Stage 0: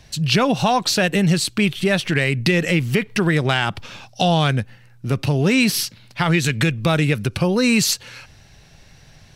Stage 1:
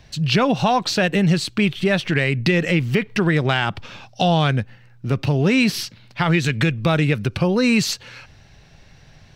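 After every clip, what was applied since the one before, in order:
parametric band 11,000 Hz −11.5 dB 1.3 octaves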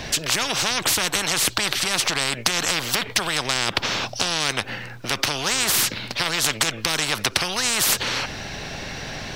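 every bin compressed towards the loudest bin 10 to 1
level +3.5 dB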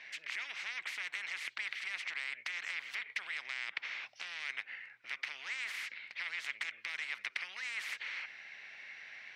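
resonant band-pass 2,100 Hz, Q 5
level −8 dB

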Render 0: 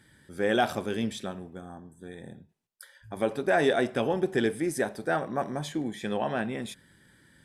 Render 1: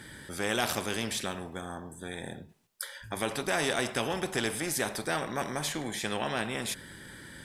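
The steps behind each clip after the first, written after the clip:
every bin compressed towards the loudest bin 2 to 1
level −1.5 dB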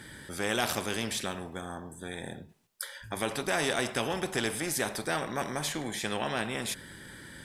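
no processing that can be heard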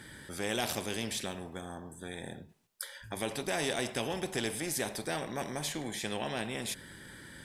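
dynamic equaliser 1,300 Hz, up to −7 dB, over −48 dBFS, Q 1.9
level −2.5 dB

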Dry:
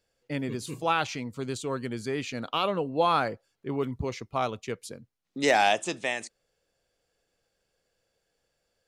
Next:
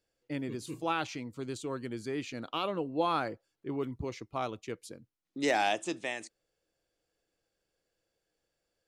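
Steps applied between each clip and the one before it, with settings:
parametric band 320 Hz +8.5 dB 0.29 octaves
level −6.5 dB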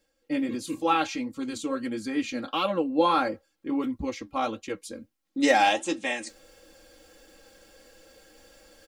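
reversed playback
upward compression, threshold −44 dBFS
reversed playback
flanger 1.5 Hz, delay 5.2 ms, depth 7.8 ms, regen −58%
comb filter 3.7 ms, depth 90%
level +8.5 dB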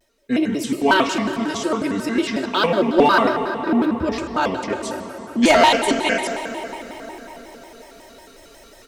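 asymmetric clip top −18 dBFS
dense smooth reverb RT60 4.7 s, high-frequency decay 0.6×, DRR 5.5 dB
pitch modulation by a square or saw wave square 5.5 Hz, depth 250 cents
level +7.5 dB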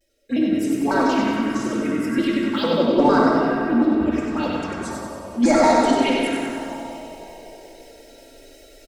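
phaser swept by the level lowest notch 170 Hz, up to 3,000 Hz, full sweep at −13 dBFS
repeating echo 95 ms, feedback 54%, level −4 dB
rectangular room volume 3,200 cubic metres, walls mixed, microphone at 2.3 metres
level −5 dB

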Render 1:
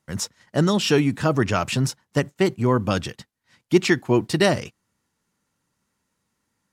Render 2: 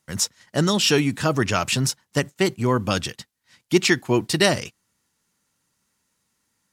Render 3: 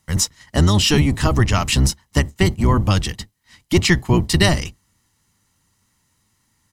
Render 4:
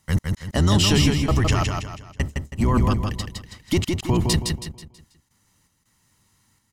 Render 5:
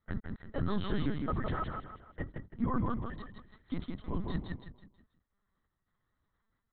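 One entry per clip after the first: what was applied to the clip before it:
high-shelf EQ 2,200 Hz +8.5 dB; level −1.5 dB
sub-octave generator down 1 octave, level +3 dB; comb filter 1 ms, depth 34%; in parallel at +2.5 dB: downward compressor, threshold −23 dBFS, peak gain reduction 12.5 dB; on the sum: level −2 dB
brickwall limiter −11 dBFS, peak gain reduction 9.5 dB; gate pattern "x.xxxx.xx...x.x" 82 BPM −60 dB; repeating echo 162 ms, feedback 38%, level −4 dB
phaser with its sweep stopped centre 530 Hz, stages 8; linear-prediction vocoder at 8 kHz pitch kept; level −9 dB

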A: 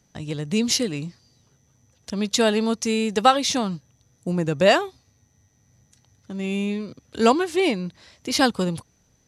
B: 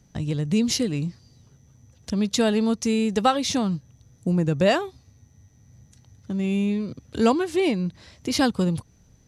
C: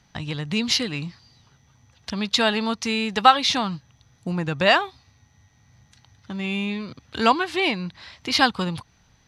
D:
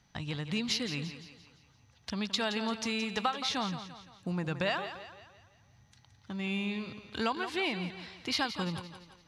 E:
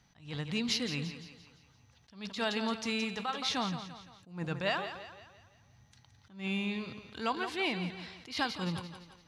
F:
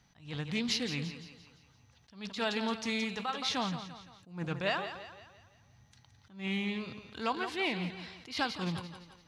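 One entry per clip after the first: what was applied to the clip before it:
low-shelf EQ 260 Hz +10.5 dB; in parallel at +2 dB: downward compressor, threshold −26 dBFS, peak gain reduction 16.5 dB; on the sum: level −7 dB
flat-topped bell 1,900 Hz +13 dB 3 octaves; level −4.5 dB
downward compressor 6 to 1, threshold −21 dBFS, peak gain reduction 13 dB; on a send: feedback echo with a high-pass in the loop 171 ms, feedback 47%, high-pass 170 Hz, level −10.5 dB; on the sum: level −7 dB
on a send at −19 dB: convolution reverb RT60 0.60 s, pre-delay 3 ms; on the sum: level that may rise only so fast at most 150 dB per second
highs frequency-modulated by the lows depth 0.14 ms

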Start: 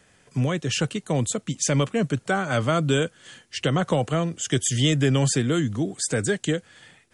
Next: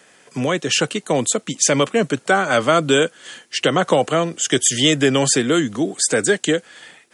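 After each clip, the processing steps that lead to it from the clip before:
high-pass filter 280 Hz 12 dB per octave
level +8.5 dB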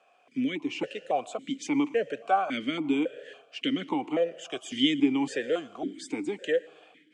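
on a send at −19 dB: convolution reverb RT60 1.4 s, pre-delay 106 ms
on the sum: formant filter that steps through the vowels 3.6 Hz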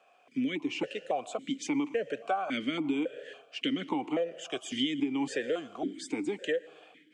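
downward compressor 10 to 1, threshold −26 dBFS, peak gain reduction 9.5 dB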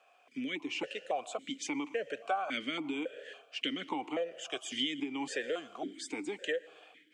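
low-shelf EQ 350 Hz −12 dB

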